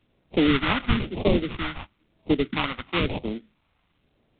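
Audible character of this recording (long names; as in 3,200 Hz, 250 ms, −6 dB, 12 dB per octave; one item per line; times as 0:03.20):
aliases and images of a low sample rate 1,700 Hz, jitter 20%
phaser sweep stages 2, 1 Hz, lowest notch 370–1,400 Hz
A-law companding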